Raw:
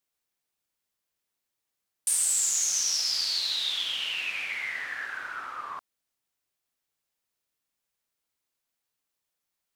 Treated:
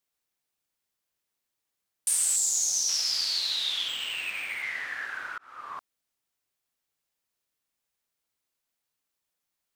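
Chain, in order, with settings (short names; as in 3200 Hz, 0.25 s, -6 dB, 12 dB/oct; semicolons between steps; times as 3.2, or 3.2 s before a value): 2.36–2.89 band shelf 1900 Hz -10.5 dB; 3.88–4.63 decimation joined by straight lines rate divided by 4×; 5.38–5.78 fade in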